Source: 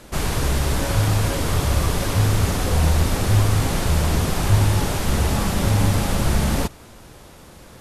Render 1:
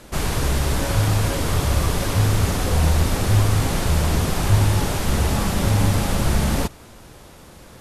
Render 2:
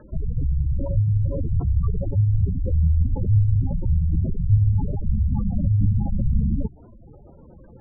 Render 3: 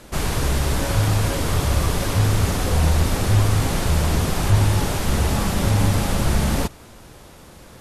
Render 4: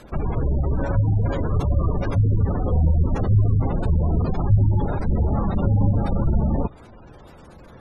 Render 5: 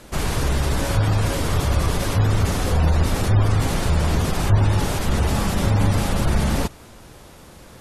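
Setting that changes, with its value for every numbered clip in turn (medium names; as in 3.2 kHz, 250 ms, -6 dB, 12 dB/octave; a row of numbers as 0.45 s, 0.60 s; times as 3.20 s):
spectral gate, under each frame's peak: -60 dB, -10 dB, -45 dB, -20 dB, -35 dB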